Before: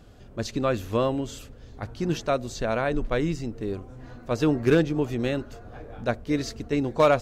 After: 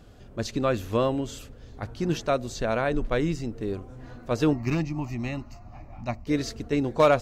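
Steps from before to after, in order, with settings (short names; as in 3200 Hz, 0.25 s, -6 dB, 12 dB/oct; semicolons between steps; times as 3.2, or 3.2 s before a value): 4.53–6.27 fixed phaser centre 2300 Hz, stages 8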